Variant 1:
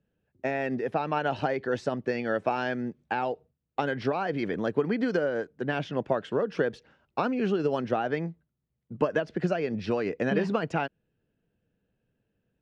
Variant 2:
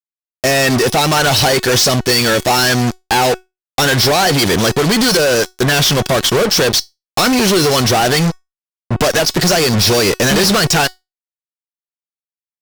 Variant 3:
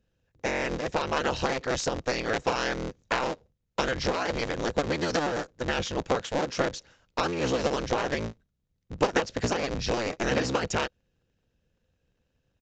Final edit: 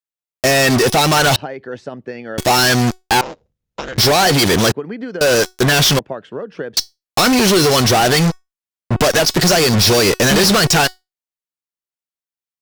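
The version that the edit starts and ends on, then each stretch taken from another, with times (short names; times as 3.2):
2
1.36–2.38 from 1
3.21–3.98 from 3
4.72–5.21 from 1
5.99–6.77 from 1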